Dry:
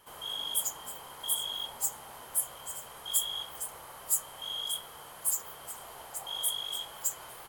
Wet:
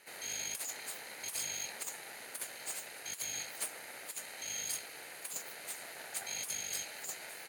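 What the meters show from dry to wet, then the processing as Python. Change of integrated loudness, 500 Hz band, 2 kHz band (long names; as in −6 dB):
−6.5 dB, −2.0 dB, +7.0 dB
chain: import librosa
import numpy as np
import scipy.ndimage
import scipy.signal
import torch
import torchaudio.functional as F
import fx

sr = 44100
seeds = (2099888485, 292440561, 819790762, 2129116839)

y = fx.lower_of_two(x, sr, delay_ms=0.46)
y = fx.weighting(y, sr, curve='A')
y = fx.over_compress(y, sr, threshold_db=-38.0, ratio=-0.5)
y = y * 10.0 ** (1.0 / 20.0)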